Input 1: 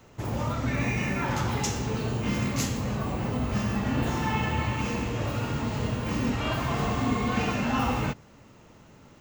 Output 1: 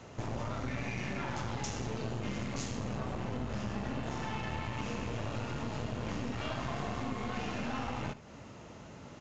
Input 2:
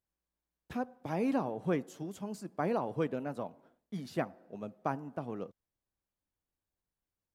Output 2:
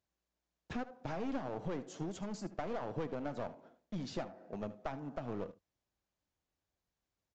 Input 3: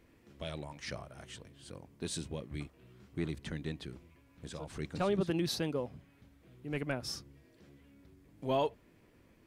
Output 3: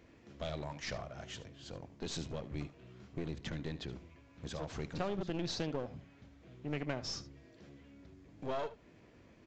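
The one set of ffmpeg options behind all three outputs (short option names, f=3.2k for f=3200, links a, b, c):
-af "highpass=40,equalizer=f=660:w=3.9:g=3.5,acompressor=threshold=-35dB:ratio=6,aeval=exprs='clip(val(0),-1,0.00631)':c=same,aecho=1:1:75:0.158,aresample=16000,aresample=44100,volume=3dB"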